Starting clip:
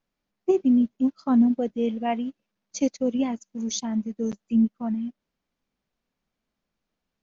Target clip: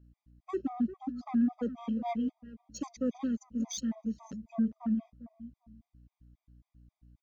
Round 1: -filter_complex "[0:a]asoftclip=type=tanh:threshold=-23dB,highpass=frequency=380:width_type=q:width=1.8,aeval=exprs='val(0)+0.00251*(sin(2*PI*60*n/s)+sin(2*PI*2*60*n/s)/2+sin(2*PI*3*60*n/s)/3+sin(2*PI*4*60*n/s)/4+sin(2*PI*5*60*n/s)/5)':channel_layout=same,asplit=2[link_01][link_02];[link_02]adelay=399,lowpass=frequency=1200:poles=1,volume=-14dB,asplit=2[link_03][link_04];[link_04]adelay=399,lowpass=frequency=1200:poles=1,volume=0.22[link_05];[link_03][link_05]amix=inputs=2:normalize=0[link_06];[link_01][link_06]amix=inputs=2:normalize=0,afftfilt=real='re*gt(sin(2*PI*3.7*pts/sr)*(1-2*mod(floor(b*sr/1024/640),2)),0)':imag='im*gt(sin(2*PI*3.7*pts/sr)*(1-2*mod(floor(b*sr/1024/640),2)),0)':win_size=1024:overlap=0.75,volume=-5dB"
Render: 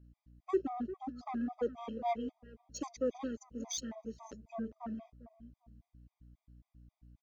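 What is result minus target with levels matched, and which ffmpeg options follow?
500 Hz band +8.5 dB
-filter_complex "[0:a]asoftclip=type=tanh:threshold=-23dB,highpass=frequency=190:width_type=q:width=1.8,aeval=exprs='val(0)+0.00251*(sin(2*PI*60*n/s)+sin(2*PI*2*60*n/s)/2+sin(2*PI*3*60*n/s)/3+sin(2*PI*4*60*n/s)/4+sin(2*PI*5*60*n/s)/5)':channel_layout=same,asplit=2[link_01][link_02];[link_02]adelay=399,lowpass=frequency=1200:poles=1,volume=-14dB,asplit=2[link_03][link_04];[link_04]adelay=399,lowpass=frequency=1200:poles=1,volume=0.22[link_05];[link_03][link_05]amix=inputs=2:normalize=0[link_06];[link_01][link_06]amix=inputs=2:normalize=0,afftfilt=real='re*gt(sin(2*PI*3.7*pts/sr)*(1-2*mod(floor(b*sr/1024/640),2)),0)':imag='im*gt(sin(2*PI*3.7*pts/sr)*(1-2*mod(floor(b*sr/1024/640),2)),0)':win_size=1024:overlap=0.75,volume=-5dB"

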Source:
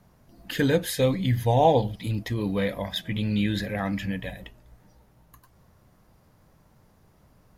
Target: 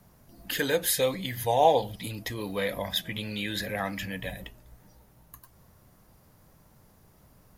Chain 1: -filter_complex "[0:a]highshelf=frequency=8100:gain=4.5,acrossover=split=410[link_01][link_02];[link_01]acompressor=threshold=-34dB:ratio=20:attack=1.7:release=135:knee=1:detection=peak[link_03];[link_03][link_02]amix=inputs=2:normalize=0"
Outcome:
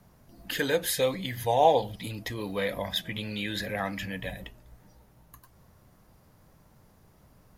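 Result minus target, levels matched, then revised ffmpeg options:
8,000 Hz band −3.0 dB
-filter_complex "[0:a]highshelf=frequency=8100:gain=11,acrossover=split=410[link_01][link_02];[link_01]acompressor=threshold=-34dB:ratio=20:attack=1.7:release=135:knee=1:detection=peak[link_03];[link_03][link_02]amix=inputs=2:normalize=0"

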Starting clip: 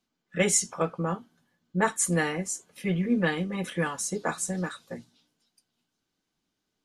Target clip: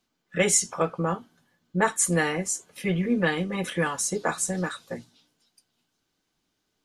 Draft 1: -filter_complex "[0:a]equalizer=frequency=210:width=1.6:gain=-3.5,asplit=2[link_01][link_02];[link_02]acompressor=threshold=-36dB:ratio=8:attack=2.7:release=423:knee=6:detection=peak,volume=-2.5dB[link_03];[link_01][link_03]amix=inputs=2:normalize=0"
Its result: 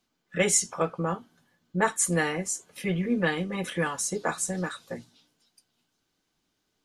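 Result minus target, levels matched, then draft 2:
downward compressor: peak gain reduction +10 dB
-filter_complex "[0:a]equalizer=frequency=210:width=1.6:gain=-3.5,asplit=2[link_01][link_02];[link_02]acompressor=threshold=-24.5dB:ratio=8:attack=2.7:release=423:knee=6:detection=peak,volume=-2.5dB[link_03];[link_01][link_03]amix=inputs=2:normalize=0"

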